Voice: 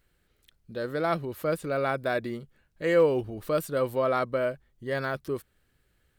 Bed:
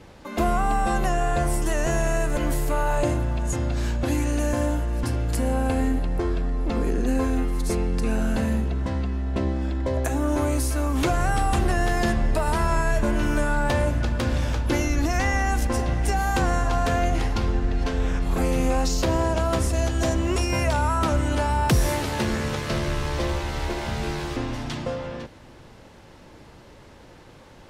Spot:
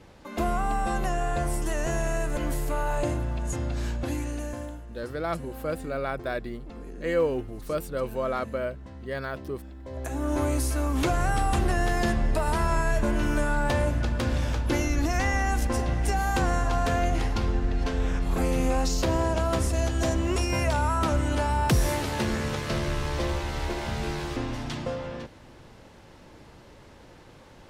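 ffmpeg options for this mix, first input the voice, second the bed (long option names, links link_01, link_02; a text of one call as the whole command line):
ffmpeg -i stem1.wav -i stem2.wav -filter_complex "[0:a]adelay=4200,volume=-3dB[link_01];[1:a]volume=10dB,afade=type=out:start_time=3.88:duration=0.94:silence=0.237137,afade=type=in:start_time=9.84:duration=0.57:silence=0.188365[link_02];[link_01][link_02]amix=inputs=2:normalize=0" out.wav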